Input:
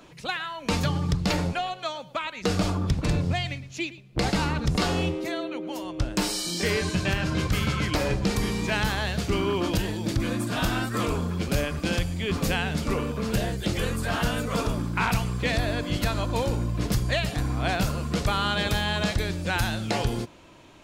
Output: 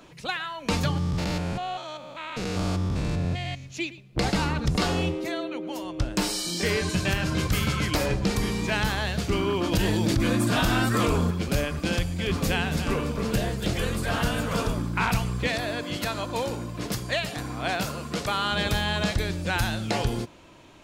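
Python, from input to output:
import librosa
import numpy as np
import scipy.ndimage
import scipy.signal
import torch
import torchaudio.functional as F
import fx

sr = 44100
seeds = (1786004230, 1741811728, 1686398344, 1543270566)

y = fx.spec_steps(x, sr, hold_ms=200, at=(0.97, 3.64), fade=0.02)
y = fx.high_shelf(y, sr, hz=8200.0, db=8.5, at=(6.89, 8.06))
y = fx.env_flatten(y, sr, amount_pct=70, at=(9.72, 11.31))
y = fx.echo_single(y, sr, ms=285, db=-9.5, at=(11.9, 14.79))
y = fx.highpass(y, sr, hz=260.0, slope=6, at=(15.47, 18.52))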